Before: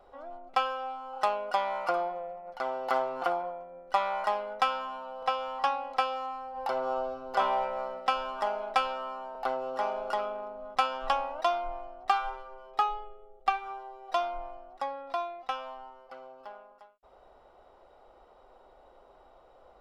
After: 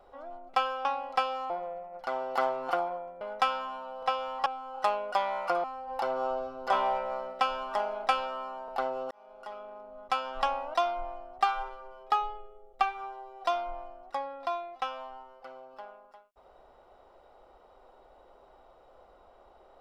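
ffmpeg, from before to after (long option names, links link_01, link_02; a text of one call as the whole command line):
ffmpeg -i in.wav -filter_complex "[0:a]asplit=7[link_01][link_02][link_03][link_04][link_05][link_06][link_07];[link_01]atrim=end=0.852[link_08];[link_02]atrim=start=5.658:end=6.312[link_09];[link_03]atrim=start=2.028:end=3.742[link_10];[link_04]atrim=start=4.408:end=5.662[link_11];[link_05]atrim=start=0.848:end=2.032[link_12];[link_06]atrim=start=6.308:end=9.78,asetpts=PTS-STARTPTS,afade=type=out:start_time=3.468:duration=0.004:curve=hsin[link_13];[link_07]atrim=start=9.78,asetpts=PTS-STARTPTS,afade=type=in:duration=1.46[link_14];[link_08][link_09]acrossfade=duration=0.004:curve1=hsin:curve2=hsin[link_15];[link_15][link_10]acrossfade=duration=0.004:curve1=hsin:curve2=hsin[link_16];[link_16][link_11]acrossfade=duration=0.004:curve1=hsin:curve2=hsin[link_17];[link_17][link_12]acrossfade=duration=0.004:curve1=hsin:curve2=hsin[link_18];[link_13][link_14]concat=n=2:v=0:a=1[link_19];[link_18][link_19]acrossfade=duration=0.004:curve1=hsin:curve2=hsin" out.wav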